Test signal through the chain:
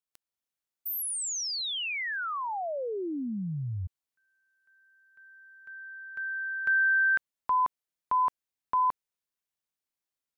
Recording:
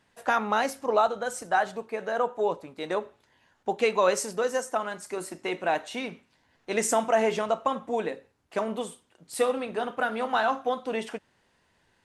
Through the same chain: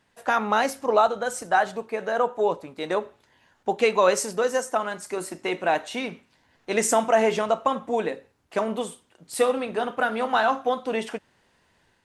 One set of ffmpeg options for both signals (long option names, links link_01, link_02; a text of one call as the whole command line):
ffmpeg -i in.wav -af "dynaudnorm=framelen=220:gausssize=3:maxgain=3.5dB" out.wav